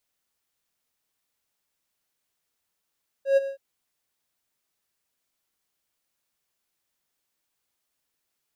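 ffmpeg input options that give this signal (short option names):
-f lavfi -i "aevalsrc='0.251*(1-4*abs(mod(547*t+0.25,1)-0.5))':d=0.323:s=44100,afade=t=in:d=0.119,afade=t=out:st=0.119:d=0.024:silence=0.211,afade=t=out:st=0.22:d=0.103"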